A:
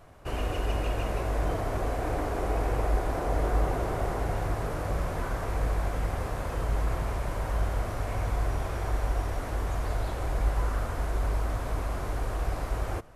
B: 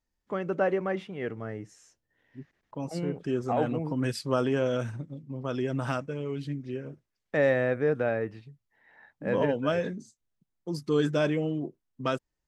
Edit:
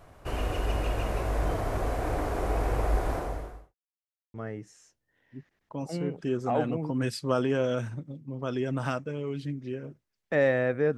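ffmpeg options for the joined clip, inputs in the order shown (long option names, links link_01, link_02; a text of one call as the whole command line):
ffmpeg -i cue0.wav -i cue1.wav -filter_complex "[0:a]apad=whole_dur=10.97,atrim=end=10.97,asplit=2[link_01][link_02];[link_01]atrim=end=3.75,asetpts=PTS-STARTPTS,afade=type=out:start_time=3.13:duration=0.62:curve=qua[link_03];[link_02]atrim=start=3.75:end=4.34,asetpts=PTS-STARTPTS,volume=0[link_04];[1:a]atrim=start=1.36:end=7.99,asetpts=PTS-STARTPTS,afade=type=in:duration=0.004:curve=hsin[link_05];[link_03][link_04][link_05]concat=n=3:v=0:a=1" out.wav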